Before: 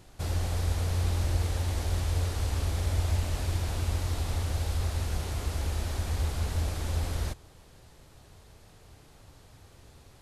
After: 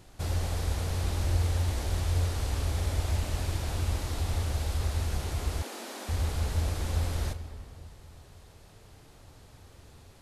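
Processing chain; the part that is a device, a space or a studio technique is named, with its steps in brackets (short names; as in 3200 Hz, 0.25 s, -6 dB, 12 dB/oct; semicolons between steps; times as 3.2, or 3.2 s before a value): compressed reverb return (on a send at -8 dB: reverb RT60 1.8 s, pre-delay 91 ms + compressor, threshold -27 dBFS, peak gain reduction 11 dB); 5.62–6.09 on the sum: Chebyshev high-pass 220 Hz, order 6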